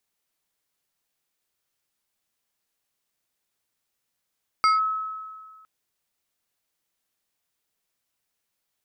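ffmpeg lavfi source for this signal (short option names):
-f lavfi -i "aevalsrc='0.188*pow(10,-3*t/1.73)*sin(2*PI*1290*t+0.57*clip(1-t/0.16,0,1)*sin(2*PI*2.68*1290*t))':d=1.01:s=44100"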